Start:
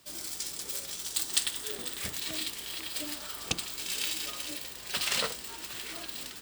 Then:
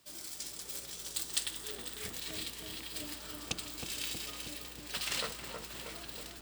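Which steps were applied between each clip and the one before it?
filtered feedback delay 318 ms, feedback 77%, low-pass 1 kHz, level -3 dB; trim -6 dB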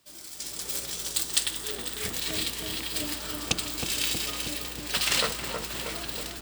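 level rider gain up to 10.5 dB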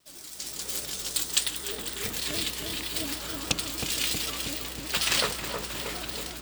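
vibrato with a chosen wave square 6.4 Hz, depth 100 cents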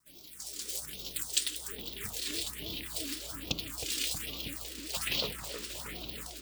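phase shifter stages 4, 1.2 Hz, lowest notch 120–1700 Hz; trim -5 dB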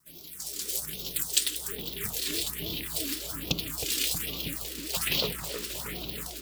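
graphic EQ with 31 bands 160 Hz +8 dB, 400 Hz +4 dB, 12.5 kHz +8 dB; trim +4 dB

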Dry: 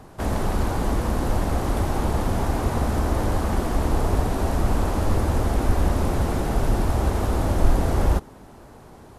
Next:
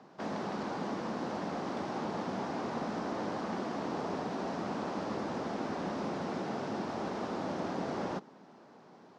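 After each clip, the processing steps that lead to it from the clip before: Chebyshev band-pass 180–5500 Hz, order 3; trim -8.5 dB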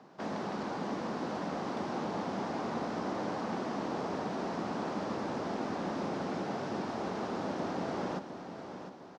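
feedback delay 704 ms, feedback 43%, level -9.5 dB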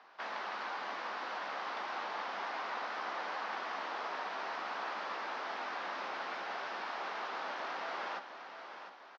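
high-pass 1.4 kHz 12 dB/octave; distance through air 230 m; doubling 15 ms -12 dB; trim +8.5 dB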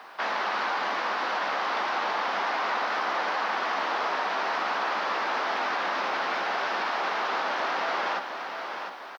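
in parallel at +3 dB: peak limiter -35 dBFS, peak gain reduction 8 dB; on the sum: word length cut 12-bit, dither none; trim +6 dB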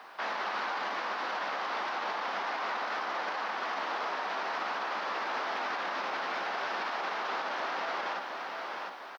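peak limiter -22 dBFS, peak gain reduction 5 dB; trim -3.5 dB

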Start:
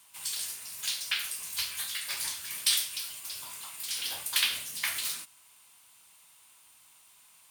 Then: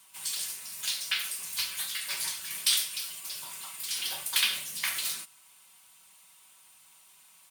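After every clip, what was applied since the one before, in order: comb 5.3 ms, depth 50%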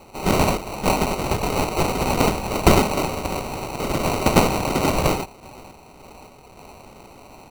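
resonant high shelf 6.3 kHz +10.5 dB, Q 3; random-step tremolo; sample-and-hold 26×; trim +4 dB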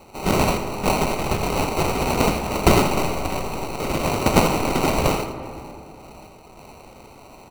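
rattle on loud lows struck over -28 dBFS, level -24 dBFS; delay 83 ms -10 dB; on a send at -10.5 dB: reverberation RT60 2.8 s, pre-delay 40 ms; on the sum: trim -1 dB

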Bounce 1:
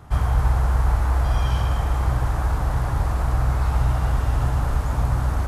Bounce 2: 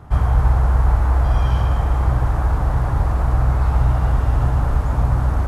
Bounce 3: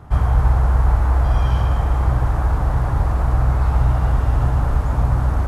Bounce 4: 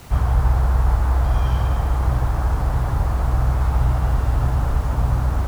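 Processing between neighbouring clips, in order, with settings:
treble shelf 2.3 kHz -9.5 dB; trim +4 dB
no audible change
added noise pink -42 dBFS; trim -2 dB

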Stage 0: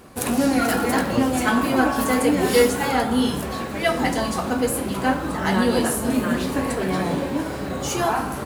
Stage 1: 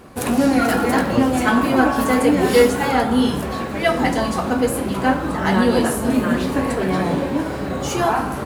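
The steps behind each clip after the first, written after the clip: treble shelf 3.9 kHz -6 dB; trim +3.5 dB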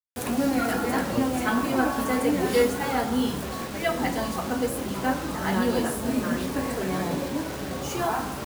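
bit crusher 5-bit; trim -8 dB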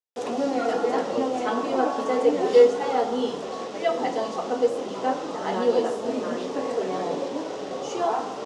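cabinet simulation 310–6300 Hz, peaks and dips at 460 Hz +9 dB, 720 Hz +4 dB, 1.6 kHz -8 dB, 2.3 kHz -6 dB, 4.3 kHz -4 dB

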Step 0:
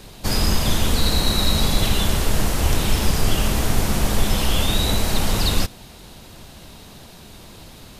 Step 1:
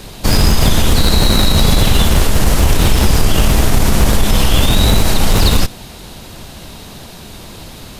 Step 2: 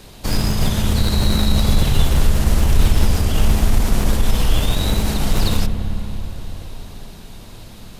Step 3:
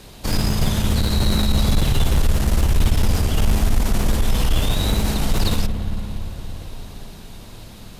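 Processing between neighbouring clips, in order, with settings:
in parallel at -3 dB: Schmitt trigger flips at -15.5 dBFS; on the sum: loudness maximiser +10 dB; trim -1 dB
on a send at -8.5 dB: tilt EQ -2 dB/octave + reverberation RT60 5.0 s, pre-delay 47 ms; on the sum: trim -9 dB
valve stage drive 7 dB, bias 0.25

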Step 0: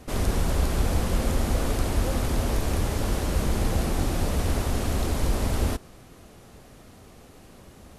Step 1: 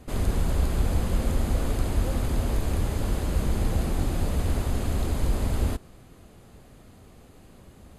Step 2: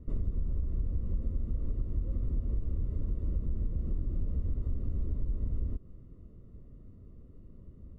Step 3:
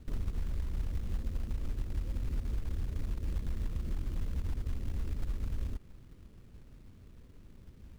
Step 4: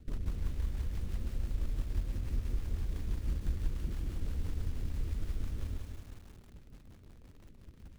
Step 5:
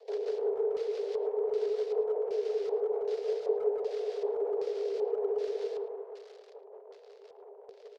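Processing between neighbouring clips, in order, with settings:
bass shelf 280 Hz +5 dB; band-stop 5.6 kHz, Q 7.2; trim -4.5 dB
bass shelf 74 Hz +9 dB; compression 10:1, threshold -23 dBFS, peak gain reduction 12.5 dB; boxcar filter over 55 samples; trim -3.5 dB
companded quantiser 6-bit; trim -3 dB
rotary cabinet horn 6 Hz; bit-crushed delay 182 ms, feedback 55%, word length 9-bit, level -5 dB
frequency shift +390 Hz; LFO low-pass square 1.3 Hz 940–4800 Hz; speakerphone echo 110 ms, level -12 dB

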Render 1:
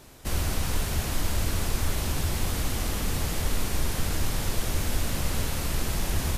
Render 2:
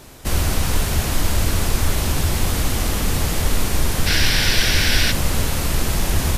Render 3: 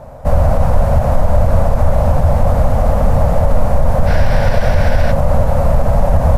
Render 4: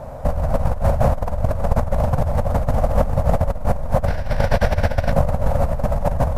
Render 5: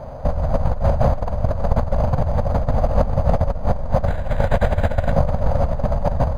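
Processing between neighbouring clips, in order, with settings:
time-frequency box 4.07–5.11 s, 1.4–6 kHz +11 dB; trim +8 dB
FFT filter 140 Hz 0 dB, 240 Hz -4 dB, 360 Hz -18 dB, 560 Hz +10 dB, 3.2 kHz -24 dB; loudness maximiser +10.5 dB; trim -1 dB
compressor with a negative ratio -13 dBFS, ratio -0.5; trim -3.5 dB
delay 297 ms -18 dB; decimation joined by straight lines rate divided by 8×

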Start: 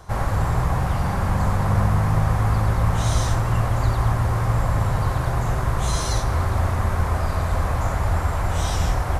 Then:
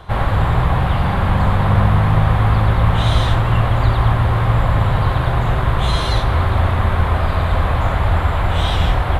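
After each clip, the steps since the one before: resonant high shelf 4.5 kHz -9 dB, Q 3; trim +5.5 dB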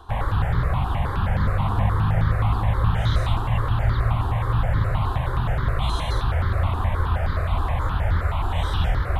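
reverse; upward compressor, threshold -16 dBFS; reverse; stepped phaser 9.5 Hz 570–2600 Hz; trim -5 dB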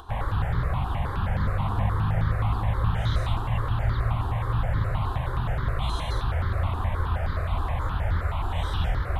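upward compressor, threshold -36 dBFS; trim -4 dB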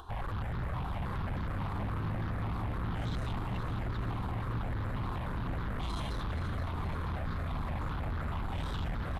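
saturation -28 dBFS, distortion -9 dB; frequency-shifting echo 477 ms, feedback 58%, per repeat +71 Hz, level -10 dB; trim -4 dB

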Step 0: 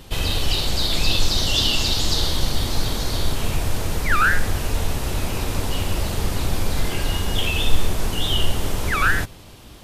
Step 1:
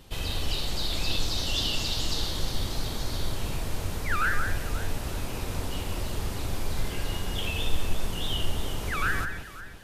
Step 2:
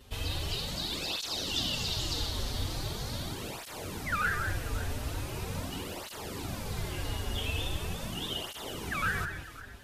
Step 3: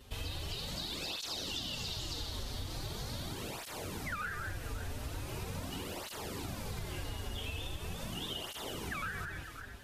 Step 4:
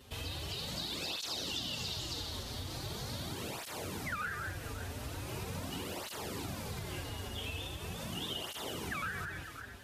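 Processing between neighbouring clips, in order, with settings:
echo whose repeats swap between lows and highs 178 ms, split 2.2 kHz, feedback 57%, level -6 dB; trim -9 dB
cancelling through-zero flanger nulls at 0.41 Hz, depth 6.4 ms
compression, threshold -35 dBFS, peak gain reduction 9.5 dB; trim -1 dB
high-pass 70 Hz; trim +1 dB

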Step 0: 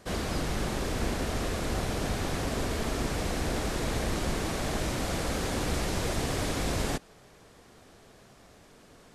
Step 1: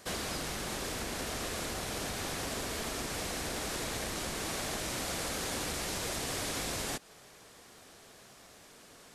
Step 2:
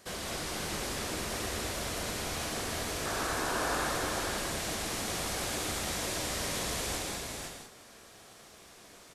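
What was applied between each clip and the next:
compression 2.5:1, threshold -33 dBFS, peak gain reduction 6 dB; tilt EQ +2 dB/octave
painted sound noise, 3.05–3.88 s, 240–1800 Hz -35 dBFS; multi-tap echo 213/506 ms -4/-3.5 dB; gated-style reverb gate 230 ms flat, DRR 1 dB; trim -3.5 dB

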